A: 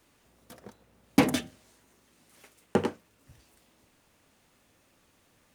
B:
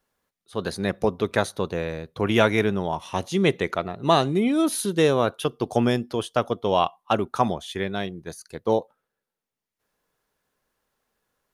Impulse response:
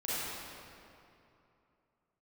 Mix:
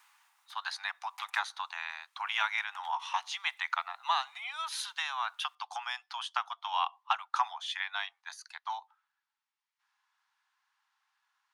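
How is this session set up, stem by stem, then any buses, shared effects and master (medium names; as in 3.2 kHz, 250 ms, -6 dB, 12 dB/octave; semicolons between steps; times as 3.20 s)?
-4.0 dB, 0.00 s, no send, three bands compressed up and down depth 40%; auto duck -10 dB, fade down 0.75 s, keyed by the second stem
+1.5 dB, 0.00 s, no send, low-pass 5 kHz 12 dB/octave; compression 2.5:1, threshold -25 dBFS, peak gain reduction 8.5 dB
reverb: none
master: steep high-pass 820 Hz 72 dB/octave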